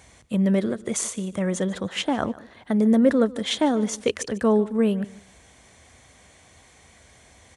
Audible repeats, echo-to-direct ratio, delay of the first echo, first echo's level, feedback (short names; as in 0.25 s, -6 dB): 2, -19.5 dB, 0.148 s, -19.5 dB, 24%